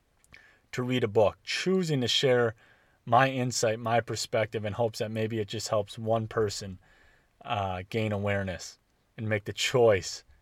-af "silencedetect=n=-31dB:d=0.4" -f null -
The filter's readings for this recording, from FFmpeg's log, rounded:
silence_start: 0.00
silence_end: 0.73 | silence_duration: 0.73
silence_start: 2.50
silence_end: 3.08 | silence_duration: 0.57
silence_start: 6.63
silence_end: 7.47 | silence_duration: 0.84
silence_start: 8.64
silence_end: 9.19 | silence_duration: 0.55